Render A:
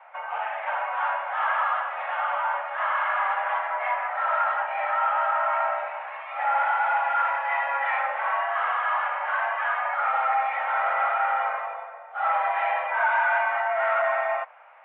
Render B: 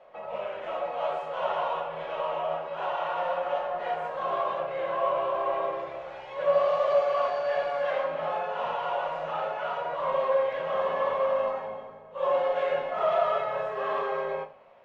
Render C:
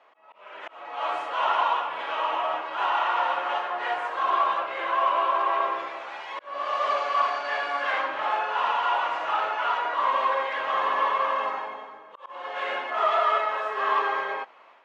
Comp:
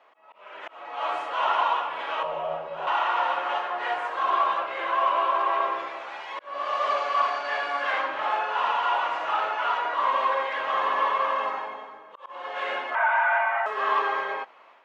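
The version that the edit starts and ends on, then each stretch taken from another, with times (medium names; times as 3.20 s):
C
2.23–2.87 s: from B
12.95–13.66 s: from A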